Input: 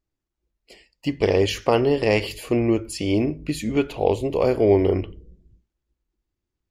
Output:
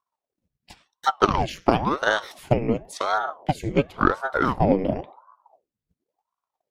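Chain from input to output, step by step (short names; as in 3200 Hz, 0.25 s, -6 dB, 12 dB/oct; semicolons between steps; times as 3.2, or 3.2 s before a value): transient shaper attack +9 dB, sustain -4 dB; ring modulator with a swept carrier 580 Hz, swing 85%, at 0.94 Hz; gain -2.5 dB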